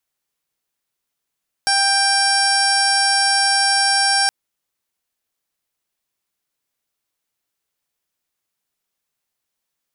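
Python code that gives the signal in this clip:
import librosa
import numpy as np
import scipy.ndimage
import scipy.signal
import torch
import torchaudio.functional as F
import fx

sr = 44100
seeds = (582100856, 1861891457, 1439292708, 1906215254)

y = fx.additive_steady(sr, length_s=2.62, hz=789.0, level_db=-20.0, upper_db=(0, -10, -16.0, -14.5, -4.0, 2, -14.5, -19.5, -9.5, -18, -4))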